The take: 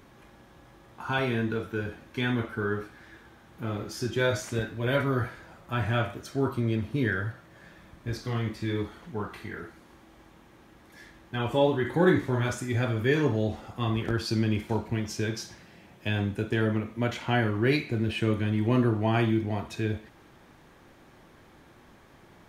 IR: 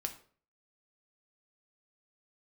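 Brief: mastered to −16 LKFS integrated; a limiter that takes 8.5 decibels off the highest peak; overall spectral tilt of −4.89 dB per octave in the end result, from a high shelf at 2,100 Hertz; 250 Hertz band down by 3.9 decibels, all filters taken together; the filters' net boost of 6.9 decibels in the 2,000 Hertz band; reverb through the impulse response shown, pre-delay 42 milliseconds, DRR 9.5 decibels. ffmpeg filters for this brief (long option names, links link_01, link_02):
-filter_complex "[0:a]equalizer=frequency=250:width_type=o:gain=-5.5,equalizer=frequency=2000:width_type=o:gain=6.5,highshelf=frequency=2100:gain=5,alimiter=limit=-16.5dB:level=0:latency=1,asplit=2[link_01][link_02];[1:a]atrim=start_sample=2205,adelay=42[link_03];[link_02][link_03]afir=irnorm=-1:irlink=0,volume=-9.5dB[link_04];[link_01][link_04]amix=inputs=2:normalize=0,volume=13dB"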